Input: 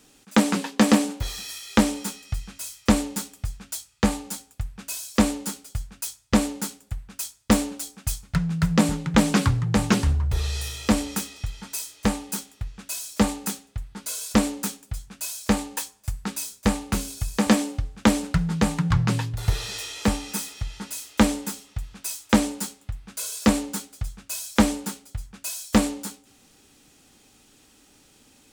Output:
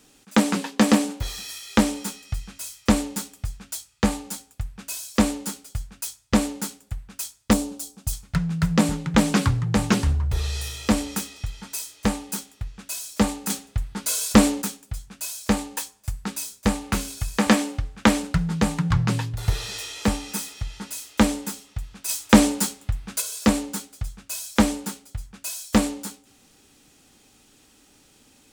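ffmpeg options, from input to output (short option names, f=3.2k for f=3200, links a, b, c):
-filter_complex "[0:a]asettb=1/sr,asplit=3[a][b][c];[a]atrim=end=7.534[d];[b]atrim=start=7.53:end=8.13,asetpts=PTS-STARTPTS,afade=t=in:d=0.004:c=qsin,afade=t=out:st=0.596:d=0.004:c=qsin,equalizer=f=1.9k:t=o:w=1.5:g=-10.5[e];[c]atrim=start=8.126[f];[d][e]acrossfade=d=0.004:c1=hsin:c2=qsin[g];[g][f]acrossfade=d=0.004:c1=qsin:c2=hsin,asettb=1/sr,asplit=3[h][i][j];[h]atrim=end=13.504[k];[i]atrim=start=13.5:end=14.62,asetpts=PTS-STARTPTS,afade=t=in:d=0.004:c=qsin,afade=t=out:st=1.116:d=0.004:c=qsin,acontrast=67[l];[j]atrim=start=14.616[m];[k][l]acrossfade=d=0.004:c1=hsin:c2=qsin[n];[n][m]acrossfade=d=0.004:c1=qsin:c2=hsin,asettb=1/sr,asplit=3[o][p][q];[o]atrim=end=16.844[r];[p]atrim=start=16.84:end=18.23,asetpts=PTS-STARTPTS,afade=t=in:d=0.004:c=qsin,afade=t=out:st=1.386:d=0.004:c=qsin,equalizer=f=1.7k:t=o:w=2.2:g=4.5[s];[q]atrim=start=18.226[t];[r][s]acrossfade=d=0.004:c1=hsin:c2=qsin[u];[u][t]acrossfade=d=0.004:c1=qsin:c2=hsin,asplit=3[v][w][x];[v]afade=t=out:st=22.08:d=0.02[y];[w]acontrast=76,afade=t=in:st=22.08:d=0.02,afade=t=out:st=23.2:d=0.02[z];[x]afade=t=in:st=23.2:d=0.02[aa];[y][z][aa]amix=inputs=3:normalize=0"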